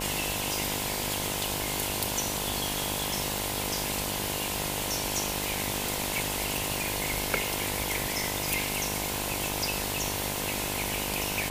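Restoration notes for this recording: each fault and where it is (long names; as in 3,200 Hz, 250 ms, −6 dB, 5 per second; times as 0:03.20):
mains buzz 50 Hz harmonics 21 −36 dBFS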